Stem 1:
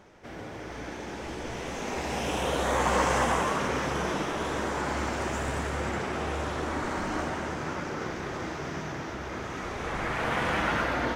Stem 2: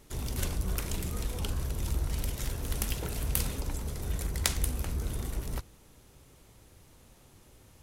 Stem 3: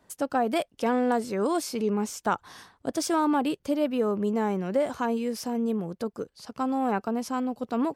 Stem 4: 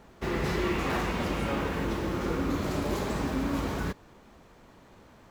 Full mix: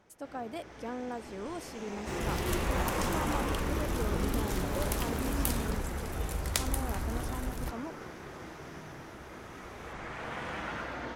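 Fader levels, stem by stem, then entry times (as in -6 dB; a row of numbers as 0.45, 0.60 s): -10.5, -2.5, -14.0, -6.5 dB; 0.00, 2.10, 0.00, 1.85 s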